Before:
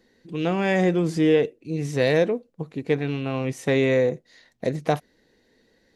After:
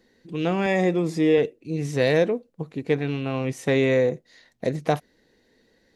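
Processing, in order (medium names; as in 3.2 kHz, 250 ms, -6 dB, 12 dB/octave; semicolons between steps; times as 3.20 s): 0.66–1.38 s: comb of notches 1.5 kHz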